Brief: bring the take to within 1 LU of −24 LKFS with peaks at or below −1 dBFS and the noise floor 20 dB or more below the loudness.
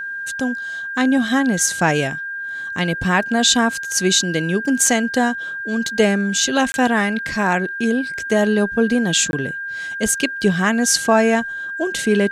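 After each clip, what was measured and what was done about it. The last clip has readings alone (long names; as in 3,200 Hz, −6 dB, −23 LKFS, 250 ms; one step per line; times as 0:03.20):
number of dropouts 2; longest dropout 21 ms; interfering tone 1,600 Hz; level of the tone −25 dBFS; integrated loudness −18.5 LKFS; sample peak −3.5 dBFS; target loudness −24.0 LKFS
→ repair the gap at 0:06.72/0:09.31, 21 ms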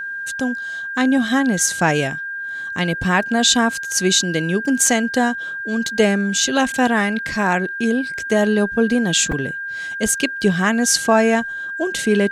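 number of dropouts 0; interfering tone 1,600 Hz; level of the tone −25 dBFS
→ notch filter 1,600 Hz, Q 30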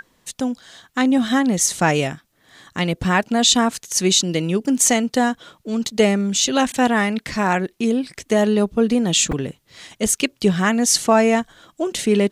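interfering tone none found; integrated loudness −19.0 LKFS; sample peak −4.0 dBFS; target loudness −24.0 LKFS
→ level −5 dB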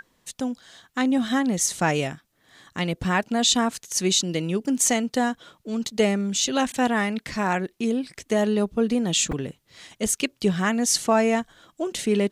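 integrated loudness −24.0 LKFS; sample peak −9.0 dBFS; background noise floor −68 dBFS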